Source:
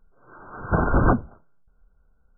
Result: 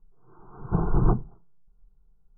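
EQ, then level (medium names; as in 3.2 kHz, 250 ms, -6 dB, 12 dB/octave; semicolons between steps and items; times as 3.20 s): low-pass 1.1 kHz 12 dB/octave; bass shelf 260 Hz +10.5 dB; static phaser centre 380 Hz, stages 8; -6.5 dB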